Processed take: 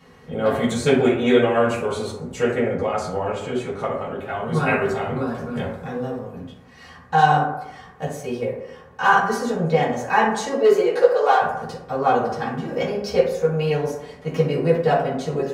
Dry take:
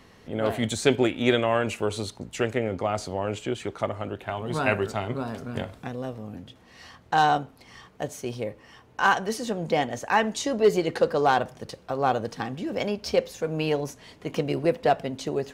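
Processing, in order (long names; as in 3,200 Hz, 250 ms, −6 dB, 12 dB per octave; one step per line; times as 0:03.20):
0:10.45–0:11.41: high-pass filter 220 Hz → 510 Hz 24 dB per octave
convolution reverb RT60 0.90 s, pre-delay 3 ms, DRR −10 dB
level −6 dB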